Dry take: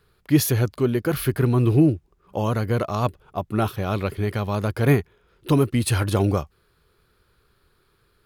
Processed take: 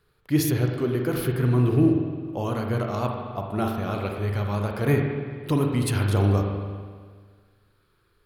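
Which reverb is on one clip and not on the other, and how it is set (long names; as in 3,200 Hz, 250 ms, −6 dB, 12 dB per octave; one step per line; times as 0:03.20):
spring reverb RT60 1.7 s, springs 40/49 ms, chirp 35 ms, DRR 1.5 dB
level −5 dB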